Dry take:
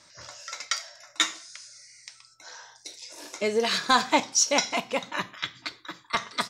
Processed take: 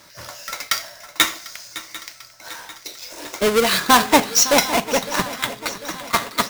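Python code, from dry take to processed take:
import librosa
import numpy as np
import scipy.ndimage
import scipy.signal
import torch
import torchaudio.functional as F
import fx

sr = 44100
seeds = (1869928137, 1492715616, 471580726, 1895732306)

y = fx.halfwave_hold(x, sr)
y = fx.echo_swing(y, sr, ms=746, ratio=3, feedback_pct=57, wet_db=-16.0)
y = F.gain(torch.from_numpy(y), 4.0).numpy()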